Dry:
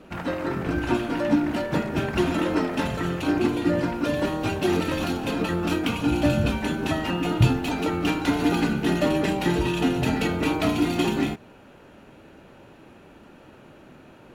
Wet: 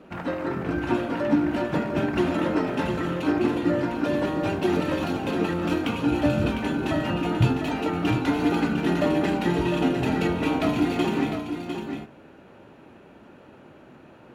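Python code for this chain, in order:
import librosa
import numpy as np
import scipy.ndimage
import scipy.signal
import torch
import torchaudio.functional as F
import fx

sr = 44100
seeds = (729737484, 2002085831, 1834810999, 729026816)

y = fx.highpass(x, sr, hz=100.0, slope=6)
y = fx.high_shelf(y, sr, hz=3400.0, db=-8.5)
y = y + 10.0 ** (-7.5 / 20.0) * np.pad(y, (int(703 * sr / 1000.0), 0))[:len(y)]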